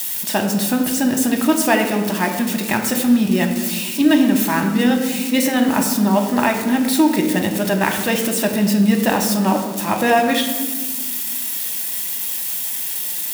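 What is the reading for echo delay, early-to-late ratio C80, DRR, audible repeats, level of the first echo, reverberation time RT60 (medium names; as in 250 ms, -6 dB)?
no echo, 8.5 dB, 2.5 dB, no echo, no echo, 1.3 s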